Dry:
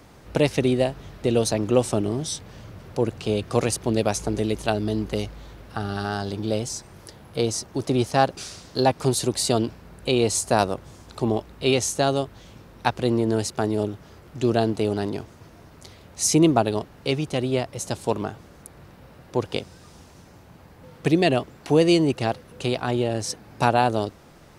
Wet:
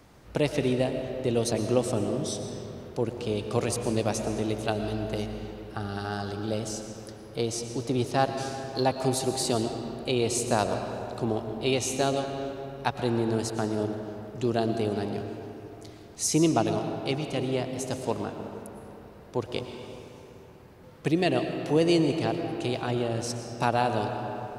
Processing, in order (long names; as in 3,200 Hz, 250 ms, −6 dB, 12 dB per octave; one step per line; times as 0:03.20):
comb and all-pass reverb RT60 3.3 s, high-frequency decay 0.55×, pre-delay 75 ms, DRR 5.5 dB
level −5.5 dB